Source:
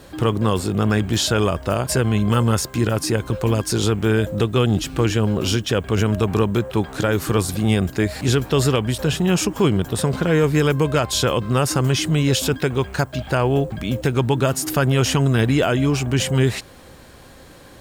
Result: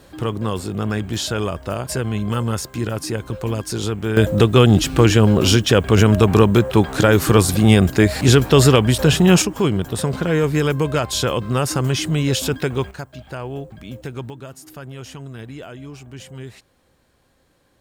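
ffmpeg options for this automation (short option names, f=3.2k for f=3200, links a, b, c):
-af "asetnsamples=n=441:p=0,asendcmd='4.17 volume volume 6dB;9.42 volume volume -1dB;12.91 volume volume -11dB;14.3 volume volume -17.5dB',volume=-4dB"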